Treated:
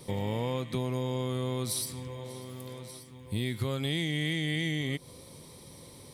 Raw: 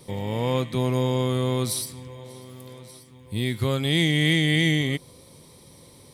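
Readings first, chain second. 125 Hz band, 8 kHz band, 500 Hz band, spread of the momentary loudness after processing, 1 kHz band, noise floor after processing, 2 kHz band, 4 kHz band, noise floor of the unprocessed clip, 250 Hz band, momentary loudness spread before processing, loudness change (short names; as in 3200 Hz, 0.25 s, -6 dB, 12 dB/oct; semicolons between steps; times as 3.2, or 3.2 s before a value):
-8.0 dB, -5.0 dB, -7.5 dB, 19 LU, -7.5 dB, -51 dBFS, -9.5 dB, -9.0 dB, -51 dBFS, -8.5 dB, 22 LU, -9.0 dB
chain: compressor 6:1, threshold -28 dBFS, peak gain reduction 11 dB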